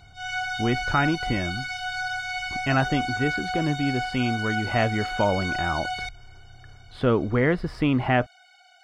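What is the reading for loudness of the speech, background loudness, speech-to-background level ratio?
−26.0 LKFS, −29.5 LKFS, 3.5 dB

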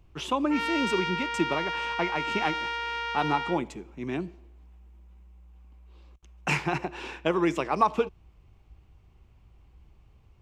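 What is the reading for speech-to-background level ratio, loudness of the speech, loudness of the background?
1.5 dB, −29.5 LKFS, −31.0 LKFS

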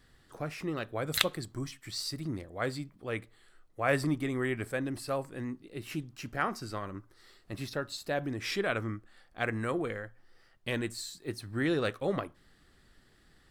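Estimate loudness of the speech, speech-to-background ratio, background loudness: −35.0 LKFS, −3.5 dB, −31.5 LKFS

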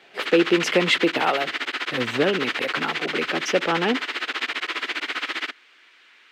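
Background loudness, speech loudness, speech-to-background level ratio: −26.5 LKFS, −23.5 LKFS, 3.0 dB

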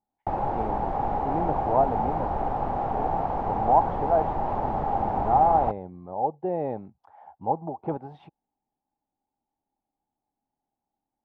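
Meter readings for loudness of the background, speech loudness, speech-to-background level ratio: −28.0 LKFS, −27.5 LKFS, 0.5 dB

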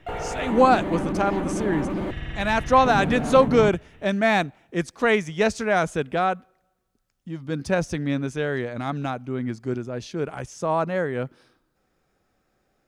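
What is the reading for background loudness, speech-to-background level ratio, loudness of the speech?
−28.5 LKFS, 5.0 dB, −23.5 LKFS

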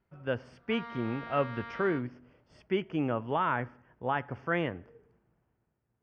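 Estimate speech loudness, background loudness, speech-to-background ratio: −33.0 LKFS, −44.0 LKFS, 11.0 dB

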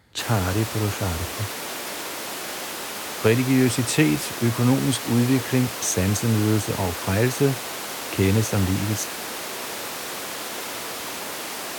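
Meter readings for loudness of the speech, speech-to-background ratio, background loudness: −23.0 LKFS, 7.0 dB, −30.0 LKFS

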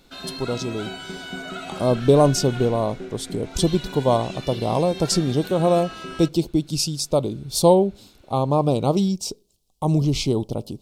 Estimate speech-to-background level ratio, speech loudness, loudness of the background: 13.5 dB, −21.5 LKFS, −35.0 LKFS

